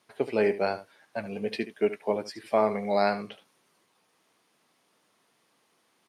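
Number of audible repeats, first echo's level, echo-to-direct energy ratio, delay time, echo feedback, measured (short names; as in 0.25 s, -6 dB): 1, -14.0 dB, -14.0 dB, 74 ms, no steady repeat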